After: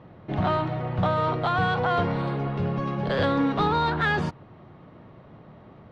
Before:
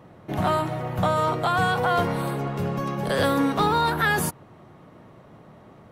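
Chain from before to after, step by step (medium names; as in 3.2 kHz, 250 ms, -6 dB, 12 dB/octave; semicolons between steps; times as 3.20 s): low-pass 4.4 kHz 24 dB/octave; bass shelf 170 Hz +5 dB; in parallel at -8.5 dB: saturation -22 dBFS, distortion -11 dB; on the sum: trim -4 dB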